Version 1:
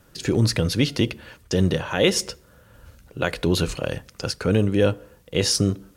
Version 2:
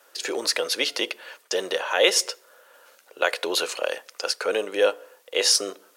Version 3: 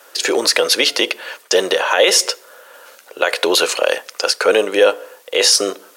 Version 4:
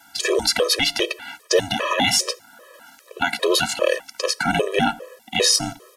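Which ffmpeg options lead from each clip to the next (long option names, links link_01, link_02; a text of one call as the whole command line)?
ffmpeg -i in.wav -af "highpass=frequency=480:width=0.5412,highpass=frequency=480:width=1.3066,volume=3dB" out.wav
ffmpeg -i in.wav -af "alimiter=level_in=12.5dB:limit=-1dB:release=50:level=0:latency=1,volume=-1dB" out.wav
ffmpeg -i in.wav -af "aresample=32000,aresample=44100,tremolo=f=270:d=0.788,afftfilt=real='re*gt(sin(2*PI*2.5*pts/sr)*(1-2*mod(floor(b*sr/1024/330),2)),0)':imag='im*gt(sin(2*PI*2.5*pts/sr)*(1-2*mod(floor(b*sr/1024/330),2)),0)':win_size=1024:overlap=0.75,volume=2dB" out.wav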